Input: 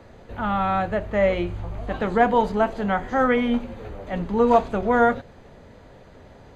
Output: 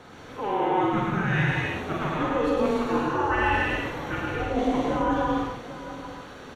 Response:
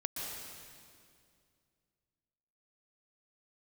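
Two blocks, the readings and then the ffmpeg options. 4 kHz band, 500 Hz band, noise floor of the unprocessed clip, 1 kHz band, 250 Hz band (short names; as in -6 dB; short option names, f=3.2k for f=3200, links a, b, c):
+2.5 dB, -5.5 dB, -48 dBFS, -3.0 dB, -2.0 dB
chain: -filter_complex "[0:a]highpass=f=730:w=0.5412,highpass=f=730:w=1.3066,areverse,acompressor=threshold=-34dB:ratio=6,areverse,afreqshift=-430,aecho=1:1:46|104|798:0.631|0.668|0.224[a];[1:a]atrim=start_sample=2205,afade=t=out:st=0.38:d=0.01,atrim=end_sample=17199[b];[a][b]afir=irnorm=-1:irlink=0,volume=9dB"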